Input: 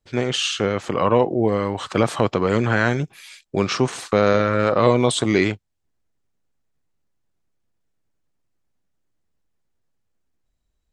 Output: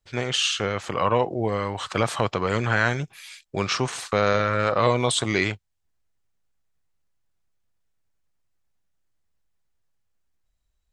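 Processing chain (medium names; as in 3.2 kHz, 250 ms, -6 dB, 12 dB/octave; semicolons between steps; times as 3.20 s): peaking EQ 280 Hz -8.5 dB 2.1 oct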